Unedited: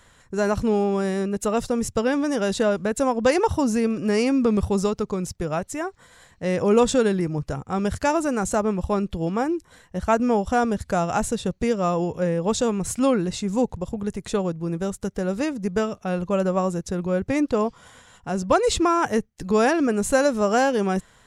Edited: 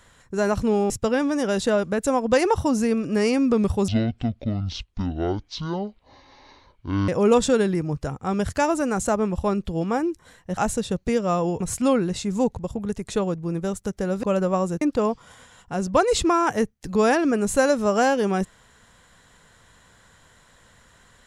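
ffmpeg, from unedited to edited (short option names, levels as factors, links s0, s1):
-filter_complex "[0:a]asplit=8[s0][s1][s2][s3][s4][s5][s6][s7];[s0]atrim=end=0.902[s8];[s1]atrim=start=1.828:end=4.814[s9];[s2]atrim=start=4.81:end=6.54,asetpts=PTS-STARTPTS,asetrate=23814,aresample=44100,atrim=end_sample=141283,asetpts=PTS-STARTPTS[s10];[s3]atrim=start=6.536:end=10.032[s11];[s4]atrim=start=11.118:end=12.152[s12];[s5]atrim=start=12.778:end=15.412[s13];[s6]atrim=start=16.268:end=16.852[s14];[s7]atrim=start=17.368[s15];[s8][s9]acrossfade=d=0.004:c1=hsin:c2=hsin[s16];[s16][s10]acrossfade=d=0.004:c1=hsin:c2=hsin[s17];[s17][s11]acrossfade=d=0.004:c1=hsin:c2=hsin[s18];[s18][s12]acrossfade=d=0.004:c1=hsin:c2=hsin[s19];[s19][s13]acrossfade=d=0.004:c1=hsin:c2=hsin[s20];[s20][s14]acrossfade=d=0.004:c1=hsin:c2=hsin[s21];[s21][s15]acrossfade=d=0.004:c1=hsin:c2=hsin"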